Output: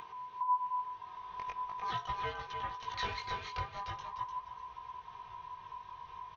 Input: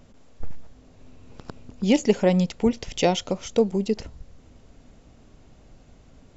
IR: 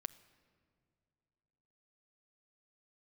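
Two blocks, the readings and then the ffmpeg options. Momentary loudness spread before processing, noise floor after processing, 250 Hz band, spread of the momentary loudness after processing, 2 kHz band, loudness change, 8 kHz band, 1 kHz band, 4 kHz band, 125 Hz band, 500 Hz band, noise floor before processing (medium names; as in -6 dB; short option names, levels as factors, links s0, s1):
8 LU, -52 dBFS, -35.5 dB, 14 LU, -6.5 dB, -16.5 dB, no reading, +1.5 dB, -11.5 dB, -19.0 dB, -26.0 dB, -53 dBFS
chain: -filter_complex "[0:a]aresample=11025,aeval=exprs='clip(val(0),-1,0.0562)':c=same,aresample=44100,acompressor=threshold=0.0178:ratio=3,equalizer=f=125:t=o:w=1:g=-5,equalizer=f=250:t=o:w=1:g=-10,equalizer=f=500:t=o:w=1:g=-7,equalizer=f=2000:t=o:w=1:g=7,equalizer=f=4000:t=o:w=1:g=-7,flanger=delay=9.6:depth=7:regen=-87:speed=1.5:shape=sinusoidal,aecho=1:1:3.5:0.66,aeval=exprs='val(0)*sin(2*PI*1000*n/s)':c=same,bandreject=f=1400:w=17,asplit=2[s0][s1];[s1]aecho=0:1:299|598|897|1196:0.447|0.134|0.0402|0.0121[s2];[s0][s2]amix=inputs=2:normalize=0,flanger=delay=15.5:depth=6.2:speed=0.42,asubboost=boost=6.5:cutoff=89,bandreject=f=140.7:t=h:w=4,bandreject=f=281.4:t=h:w=4,bandreject=f=422.1:t=h:w=4,bandreject=f=562.8:t=h:w=4,bandreject=f=703.5:t=h:w=4,bandreject=f=844.2:t=h:w=4,bandreject=f=984.9:t=h:w=4,bandreject=f=1125.6:t=h:w=4,bandreject=f=1266.3:t=h:w=4,bandreject=f=1407:t=h:w=4,bandreject=f=1547.7:t=h:w=4,bandreject=f=1688.4:t=h:w=4,bandreject=f=1829.1:t=h:w=4,bandreject=f=1969.8:t=h:w=4,bandreject=f=2110.5:t=h:w=4,bandreject=f=2251.2:t=h:w=4,bandreject=f=2391.9:t=h:w=4,bandreject=f=2532.6:t=h:w=4,bandreject=f=2673.3:t=h:w=4,bandreject=f=2814:t=h:w=4,bandreject=f=2954.7:t=h:w=4,bandreject=f=3095.4:t=h:w=4,bandreject=f=3236.1:t=h:w=4,bandreject=f=3376.8:t=h:w=4,bandreject=f=3517.5:t=h:w=4,bandreject=f=3658.2:t=h:w=4,bandreject=f=3798.9:t=h:w=4,bandreject=f=3939.6:t=h:w=4,bandreject=f=4080.3:t=h:w=4,bandreject=f=4221:t=h:w=4,bandreject=f=4361.7:t=h:w=4,bandreject=f=4502.4:t=h:w=4,bandreject=f=4643.1:t=h:w=4,acompressor=mode=upward:threshold=0.00282:ratio=2.5,volume=2.66"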